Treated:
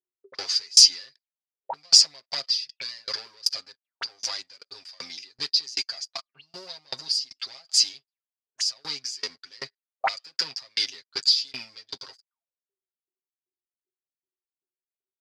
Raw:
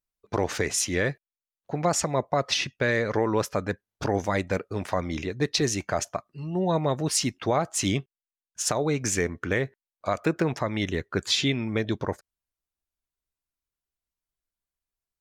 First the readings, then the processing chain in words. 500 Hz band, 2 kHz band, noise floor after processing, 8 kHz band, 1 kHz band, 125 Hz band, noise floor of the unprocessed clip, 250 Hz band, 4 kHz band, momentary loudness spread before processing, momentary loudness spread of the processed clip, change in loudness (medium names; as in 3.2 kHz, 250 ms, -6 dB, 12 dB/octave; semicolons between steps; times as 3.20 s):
-18.5 dB, -8.0 dB, under -85 dBFS, +3.5 dB, -8.0 dB, under -25 dB, under -85 dBFS, -27.0 dB, +10.5 dB, 8 LU, 23 LU, +4.5 dB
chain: waveshaping leveller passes 3; auto-wah 360–4800 Hz, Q 21, up, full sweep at -21.5 dBFS; comb 7.5 ms, depth 92%; loudness maximiser +20 dB; sawtooth tremolo in dB decaying 2.6 Hz, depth 32 dB; trim +4.5 dB